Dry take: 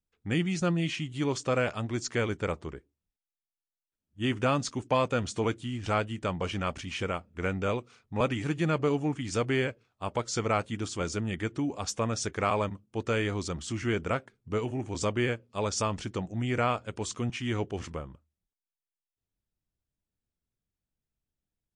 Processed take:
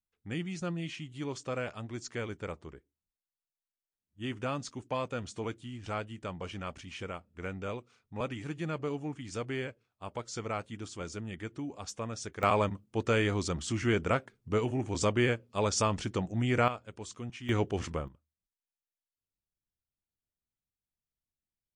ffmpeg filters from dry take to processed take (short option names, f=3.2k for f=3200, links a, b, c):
-af "asetnsamples=n=441:p=0,asendcmd='12.43 volume volume 1dB;16.68 volume volume -9dB;17.49 volume volume 2dB;18.08 volume volume -9dB',volume=-8dB"